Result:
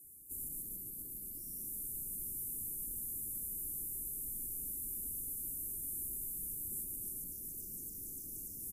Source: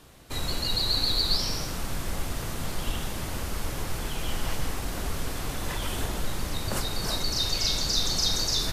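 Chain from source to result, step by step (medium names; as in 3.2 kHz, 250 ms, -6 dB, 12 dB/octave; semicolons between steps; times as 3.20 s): pre-emphasis filter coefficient 0.97; delay 855 ms -15 dB; valve stage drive 42 dB, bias 0.2; inverse Chebyshev band-stop 940–4000 Hz, stop band 60 dB; treble shelf 3.8 kHz -6 dB; on a send at -15.5 dB: reverberation RT60 1.7 s, pre-delay 116 ms; on the sum: trim +11 dB; Vorbis 48 kbps 44.1 kHz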